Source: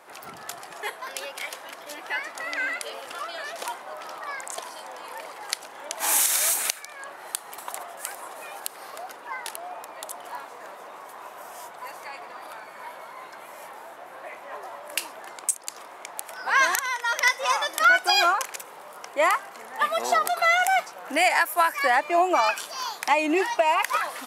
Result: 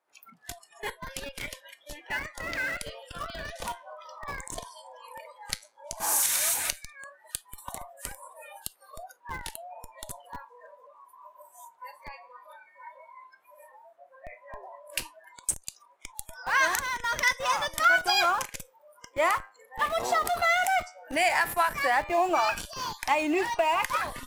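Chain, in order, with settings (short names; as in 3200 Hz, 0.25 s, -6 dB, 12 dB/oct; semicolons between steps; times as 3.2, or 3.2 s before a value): spectral noise reduction 24 dB; 5.58–6.23 band shelf 2700 Hz -10 dB 1.3 oct; flange 0.12 Hz, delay 3.1 ms, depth 9.4 ms, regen +85%; in parallel at -9 dB: Schmitt trigger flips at -33.5 dBFS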